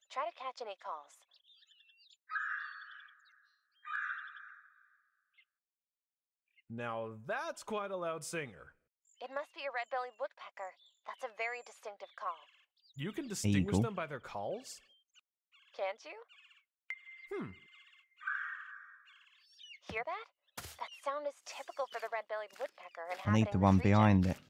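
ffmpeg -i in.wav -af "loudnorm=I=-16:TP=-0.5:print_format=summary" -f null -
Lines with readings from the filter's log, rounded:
Input Integrated:    -36.0 LUFS
Input True Peak:     -14.2 dBTP
Input LRA:            14.5 LU
Input Threshold:     -47.6 LUFS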